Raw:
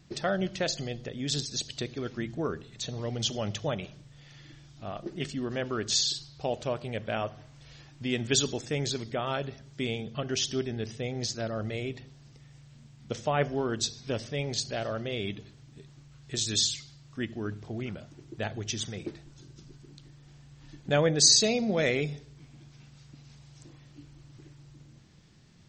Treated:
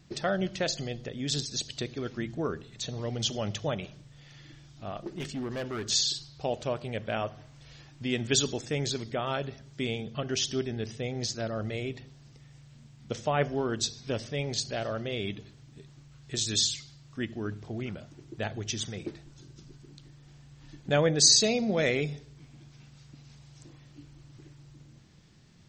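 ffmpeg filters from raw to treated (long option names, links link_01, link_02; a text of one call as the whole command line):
ffmpeg -i in.wav -filter_complex "[0:a]asettb=1/sr,asplit=3[link_01][link_02][link_03];[link_01]atrim=end=4.984[link_04];[link_02]atrim=start=4.98:end=5.89,asetpts=PTS-STARTPTS,afade=type=in:duration=0.004:curve=qsin,afade=type=out:start_time=0.906:duration=0.004:curve=qsin,volume=30.5dB,asoftclip=hard,volume=-30.5dB[link_05];[link_03]atrim=start=5.886[link_06];[link_04][link_05]acrossfade=duration=0.004:curve1=hsin:curve2=qsin[link_07];[link_07][link_06]acrossfade=duration=0.004:curve1=qsin:curve2=hsin" out.wav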